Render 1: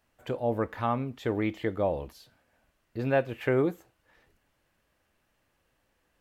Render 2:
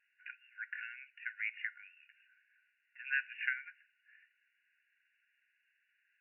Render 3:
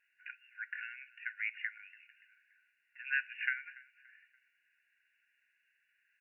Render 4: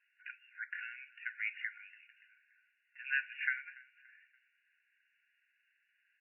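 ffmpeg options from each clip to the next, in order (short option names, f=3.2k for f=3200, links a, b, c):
-af "afftfilt=real='re*between(b*sr/4096,1400,2900)':imag='im*between(b*sr/4096,1400,2900)':win_size=4096:overlap=0.75,volume=2dB"
-af "aecho=1:1:287|574|861:0.0794|0.0318|0.0127,volume=1dB"
-ar 11025 -c:a libmp3lame -b:a 8k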